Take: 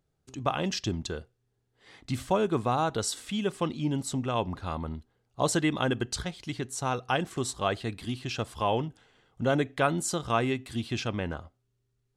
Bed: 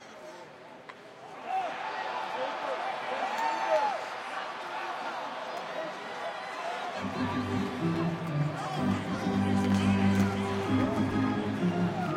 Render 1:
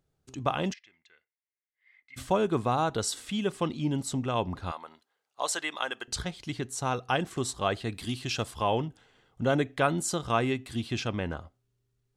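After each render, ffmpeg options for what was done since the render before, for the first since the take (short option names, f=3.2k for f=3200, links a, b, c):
-filter_complex "[0:a]asplit=3[a][b][c];[a]afade=t=out:st=0.72:d=0.02[d];[b]bandpass=f=2.1k:t=q:w=12,afade=t=in:st=0.72:d=0.02,afade=t=out:st=2.16:d=0.02[e];[c]afade=t=in:st=2.16:d=0.02[f];[d][e][f]amix=inputs=3:normalize=0,asettb=1/sr,asplit=3[g][h][i];[g]atrim=end=4.714[j];[h]atrim=start=4.71:end=6.08,asetpts=PTS-STARTPTS,afade=t=in:d=0.004:c=qsin,afade=t=out:st=1.366:d=0.004:c=qsin,highpass=780[k];[i]atrim=start=6.076[l];[j][k]acrossfade=d=0.004:c1=hsin:c2=qsin[m];[m][l]acrossfade=d=0.004:c1=qsin:c2=hsin,asettb=1/sr,asplit=3[n][o][p];[n]atrim=end=7.944[q];[o]atrim=start=7.94:end=8.51,asetpts=PTS-STARTPTS,afade=t=in:d=0.004:c=qsin,afade=t=out:st=0.566:d=0.004:c=qsin,highshelf=f=3.4k:g=7[r];[p]atrim=start=8.506[s];[q][r]acrossfade=d=0.004:c1=hsin:c2=qsin[t];[t][s]acrossfade=d=0.004:c1=qsin:c2=hsin"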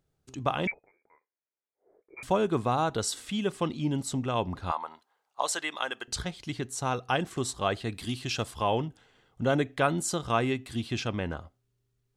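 -filter_complex "[0:a]asettb=1/sr,asplit=3[a][b][c];[a]atrim=end=0.674[d];[b]atrim=start=0.67:end=2.23,asetpts=PTS-STARTPTS,afade=t=in:d=0.004:c=qsin,afade=t=out:st=1.556:d=0.004:c=qsin,lowpass=f=2.1k:t=q:w=0.5098,lowpass=f=2.1k:t=q:w=0.6013,lowpass=f=2.1k:t=q:w=0.9,lowpass=f=2.1k:t=q:w=2.563,afreqshift=-2500[e];[c]atrim=start=2.226[f];[d][e]acrossfade=d=0.004:c1=hsin:c2=qsin[g];[g][f]acrossfade=d=0.004:c1=qsin:c2=hsin,asettb=1/sr,asplit=3[h][i][j];[h]atrim=end=4.694[k];[i]atrim=start=4.69:end=5.41,asetpts=PTS-STARTPTS,afade=t=in:d=0.004:c=qsin,afade=t=out:st=0.716:d=0.004:c=qsin,equalizer=f=920:w=1.5:g=11[l];[j]atrim=start=5.406[m];[k][l]acrossfade=d=0.004:c1=hsin:c2=qsin[n];[n][m]acrossfade=d=0.004:c1=qsin:c2=hsin"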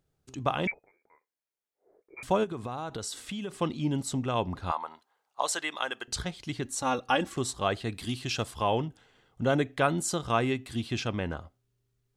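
-filter_complex "[0:a]asplit=3[a][b][c];[a]afade=t=out:st=2.43:d=0.02[d];[b]acompressor=threshold=-32dB:ratio=6:attack=3.2:release=140:knee=1:detection=peak,afade=t=in:st=2.43:d=0.02,afade=t=out:st=3.51:d=0.02[e];[c]afade=t=in:st=3.51:d=0.02[f];[d][e][f]amix=inputs=3:normalize=0,asettb=1/sr,asplit=3[g][h][i];[g]atrim=end=6.654[j];[h]atrim=start=6.65:end=7.36,asetpts=PTS-STARTPTS,afade=t=in:d=0.004:c=qsin,afade=t=out:st=0.706:d=0.004:c=qsin,aecho=1:1:3.6:0.76,atrim=end_sample=31311[k];[i]atrim=start=7.356[l];[j][k]acrossfade=d=0.004:c1=hsin:c2=qsin[m];[m][l]acrossfade=d=0.004:c1=qsin:c2=hsin"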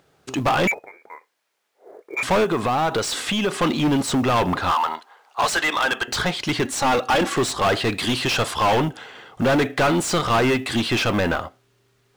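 -filter_complex "[0:a]asplit=2[a][b];[b]highpass=f=720:p=1,volume=32dB,asoftclip=type=tanh:threshold=-10.5dB[c];[a][c]amix=inputs=2:normalize=0,lowpass=f=2.5k:p=1,volume=-6dB,acrusher=bits=8:mode=log:mix=0:aa=0.000001"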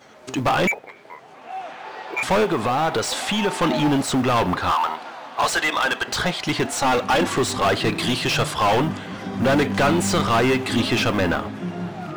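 -filter_complex "[1:a]volume=-0.5dB[a];[0:a][a]amix=inputs=2:normalize=0"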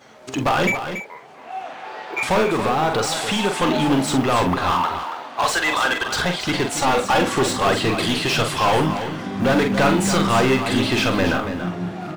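-filter_complex "[0:a]asplit=2[a][b];[b]adelay=45,volume=-6.5dB[c];[a][c]amix=inputs=2:normalize=0,asplit=2[d][e];[e]aecho=0:1:281:0.335[f];[d][f]amix=inputs=2:normalize=0"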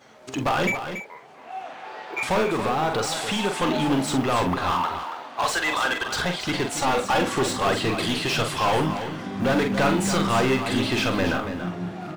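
-af "volume=-4dB"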